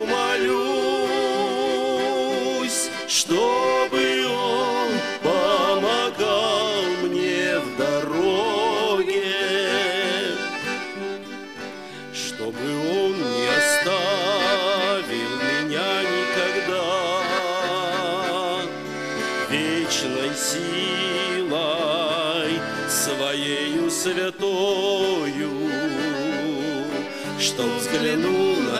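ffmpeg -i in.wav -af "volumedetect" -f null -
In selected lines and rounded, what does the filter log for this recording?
mean_volume: -22.7 dB
max_volume: -7.6 dB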